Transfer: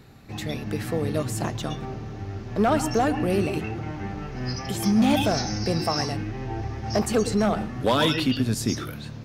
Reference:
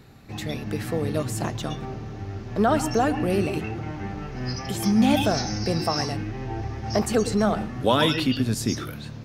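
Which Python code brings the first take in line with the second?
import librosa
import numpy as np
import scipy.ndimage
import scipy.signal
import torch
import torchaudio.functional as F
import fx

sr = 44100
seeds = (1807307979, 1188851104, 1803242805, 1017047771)

y = fx.fix_declip(x, sr, threshold_db=-14.0)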